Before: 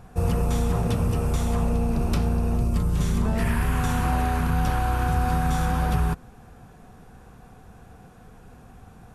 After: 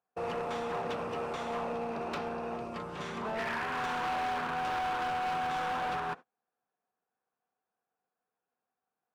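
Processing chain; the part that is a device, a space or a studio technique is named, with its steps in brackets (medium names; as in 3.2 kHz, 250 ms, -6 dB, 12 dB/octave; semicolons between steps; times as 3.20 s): walkie-talkie (band-pass 500–2900 Hz; hard clipper -30 dBFS, distortion -11 dB; gate -43 dBFS, range -34 dB)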